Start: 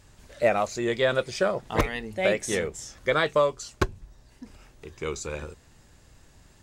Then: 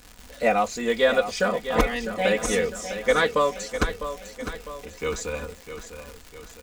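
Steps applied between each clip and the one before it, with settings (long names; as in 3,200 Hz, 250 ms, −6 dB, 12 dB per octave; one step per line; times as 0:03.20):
comb filter 4.1 ms, depth 95%
surface crackle 240 per second −33 dBFS
repeating echo 653 ms, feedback 50%, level −10.5 dB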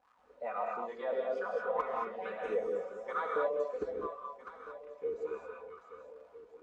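low-shelf EQ 160 Hz +5 dB
LFO wah 2.3 Hz 400–1,200 Hz, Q 5.9
reverb whose tail is shaped and stops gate 250 ms rising, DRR −0.5 dB
level −5 dB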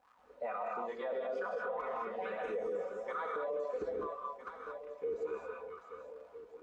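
brickwall limiter −32 dBFS, peak gain reduction 10.5 dB
level +2 dB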